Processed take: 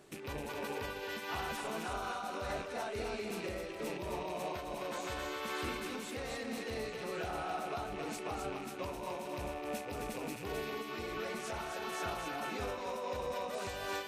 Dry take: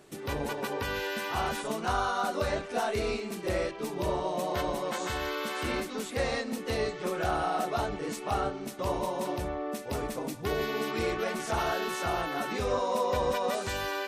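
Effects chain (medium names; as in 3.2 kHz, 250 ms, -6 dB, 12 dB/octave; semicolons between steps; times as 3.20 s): rattle on loud lows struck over -46 dBFS, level -33 dBFS; peak limiter -27 dBFS, peak gain reduction 9.5 dB; on a send: thinning echo 261 ms, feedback 40%, high-pass 310 Hz, level -4 dB; on the sum: random flutter of the level, depth 55%; trim -2 dB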